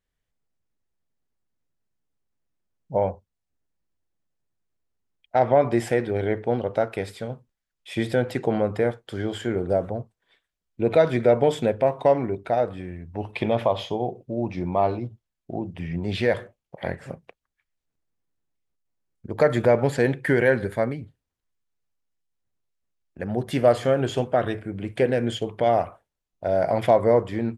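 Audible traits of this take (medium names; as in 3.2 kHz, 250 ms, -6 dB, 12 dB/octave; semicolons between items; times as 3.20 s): noise floor -84 dBFS; spectral tilt -5.5 dB/octave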